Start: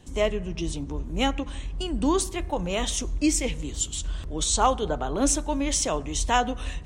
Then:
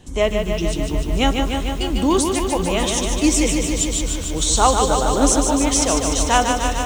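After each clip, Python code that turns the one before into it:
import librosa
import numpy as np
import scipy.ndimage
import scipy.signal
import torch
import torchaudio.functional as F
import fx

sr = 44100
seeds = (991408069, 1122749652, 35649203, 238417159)

y = fx.echo_crushed(x, sr, ms=149, feedback_pct=80, bits=8, wet_db=-5.0)
y = y * librosa.db_to_amplitude(5.5)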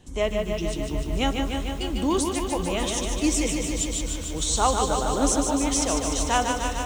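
y = fx.echo_alternate(x, sr, ms=163, hz=2200.0, feedback_pct=60, wet_db=-13.0)
y = y * librosa.db_to_amplitude(-6.5)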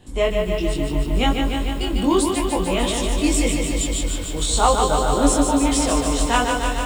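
y = fx.peak_eq(x, sr, hz=6100.0, db=-14.5, octaves=0.2)
y = fx.doubler(y, sr, ms=21.0, db=-2)
y = y * librosa.db_to_amplitude(3.0)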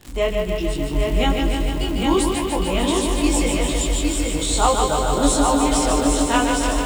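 y = fx.dmg_crackle(x, sr, seeds[0], per_s=180.0, level_db=-27.0)
y = y + 10.0 ** (-4.0 / 20.0) * np.pad(y, (int(811 * sr / 1000.0), 0))[:len(y)]
y = y * librosa.db_to_amplitude(-1.0)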